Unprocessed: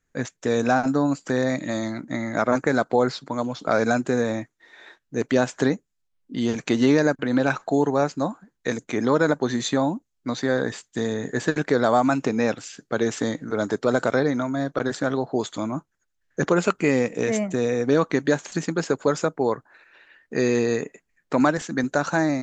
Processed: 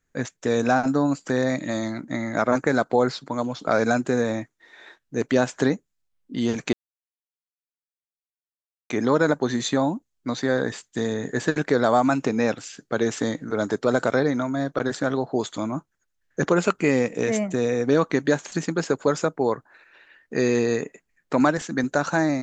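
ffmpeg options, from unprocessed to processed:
ffmpeg -i in.wav -filter_complex "[0:a]asplit=3[link_01][link_02][link_03];[link_01]atrim=end=6.73,asetpts=PTS-STARTPTS,afade=type=out:start_time=6.726:duration=0.004:curve=hsin[link_04];[link_02]atrim=start=6.73:end=8.9,asetpts=PTS-STARTPTS,volume=0[link_05];[link_03]atrim=start=8.9,asetpts=PTS-STARTPTS,afade=type=in:duration=0.004:curve=hsin[link_06];[link_04][link_05][link_06]concat=n=3:v=0:a=1" out.wav

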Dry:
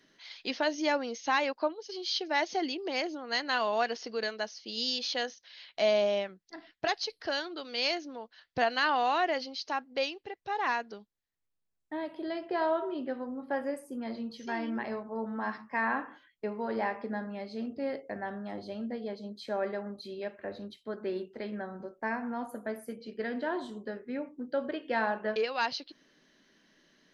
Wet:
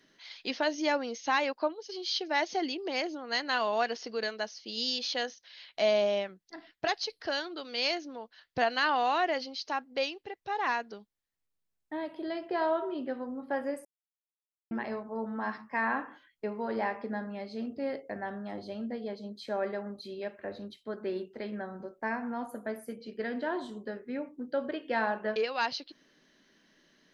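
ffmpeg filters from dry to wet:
ffmpeg -i in.wav -filter_complex "[0:a]asplit=3[link_01][link_02][link_03];[link_01]atrim=end=13.85,asetpts=PTS-STARTPTS,afade=type=out:start_time=13.846:duration=0.004:curve=hsin[link_04];[link_02]atrim=start=13.85:end=14.71,asetpts=PTS-STARTPTS,volume=0[link_05];[link_03]atrim=start=14.71,asetpts=PTS-STARTPTS,afade=type=in:duration=0.004:curve=hsin[link_06];[link_04][link_05][link_06]concat=n=3:v=0:a=1" out.wav

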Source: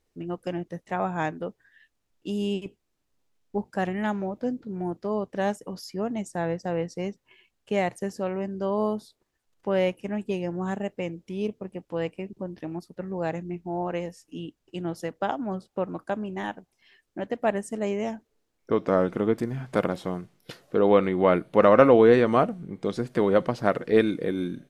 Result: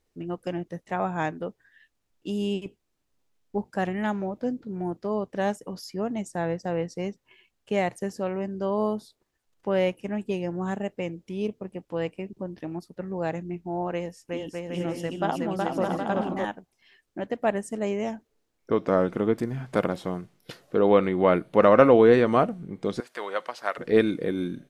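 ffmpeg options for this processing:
ffmpeg -i in.wav -filter_complex "[0:a]asettb=1/sr,asplit=3[link_01][link_02][link_03];[link_01]atrim=end=13.924[link_04];[link_02]atrim=start=13.92:end=16.45,asetpts=PTS-STARTPTS,afade=type=in:duration=0.004:curve=qsin,afade=type=out:start_time=2.526:duration=0.004:curve=qsin,aecho=1:1:370|610.5|766.8|868.4|934.5|977.4:0.794|0.631|0.501|0.398|0.316|0.251,atrim=end_sample=111573[link_05];[link_03]atrim=start=16.446[link_06];[link_04][link_05]acrossfade=duration=0.004:curve1=hsin:curve2=qsin[link_07];[link_07][link_06]acrossfade=duration=0.004:curve1=qsin:curve2=hsin,asettb=1/sr,asplit=3[link_08][link_09][link_10];[link_08]atrim=end=23.004[link_11];[link_09]atrim=start=23:end=23.78,asetpts=PTS-STARTPTS,afade=type=in:duration=0.004:curve=qsin,afade=type=out:start_time=0.776:duration=0.004:curve=qsin,highpass=910[link_12];[link_10]atrim=start=23.776[link_13];[link_11][link_12]acrossfade=duration=0.004:curve1=hsin:curve2=qsin[link_14];[link_14][link_13]acrossfade=duration=0.004:curve1=qsin:curve2=hsin" out.wav

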